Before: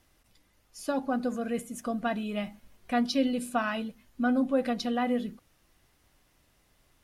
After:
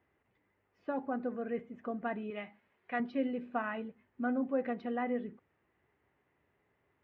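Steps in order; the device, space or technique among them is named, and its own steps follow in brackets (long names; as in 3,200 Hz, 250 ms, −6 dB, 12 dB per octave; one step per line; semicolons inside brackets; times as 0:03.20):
0:02.30–0:03.00: spectral tilt +3 dB per octave
bass cabinet (loudspeaker in its box 73–2,400 Hz, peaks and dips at 410 Hz +10 dB, 880 Hz +4 dB, 1,900 Hz +5 dB)
level −8 dB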